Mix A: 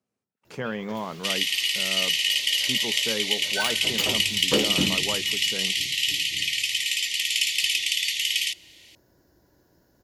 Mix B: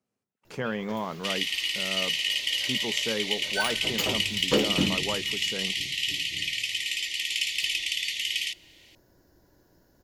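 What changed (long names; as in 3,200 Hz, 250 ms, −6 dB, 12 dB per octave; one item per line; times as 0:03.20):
second sound: add spectral tilt −2.5 dB per octave
master: remove high-pass filter 45 Hz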